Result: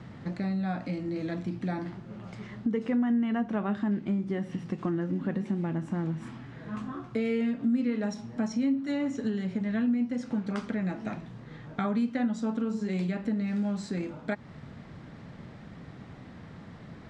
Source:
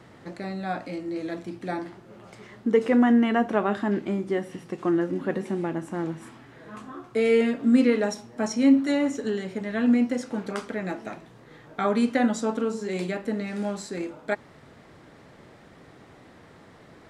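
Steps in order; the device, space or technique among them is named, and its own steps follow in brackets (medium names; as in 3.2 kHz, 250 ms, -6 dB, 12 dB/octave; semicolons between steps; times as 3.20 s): jukebox (low-pass 5.9 kHz 12 dB/octave; resonant low shelf 270 Hz +7.5 dB, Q 1.5; compression 3:1, threshold -29 dBFS, peak gain reduction 15.5 dB)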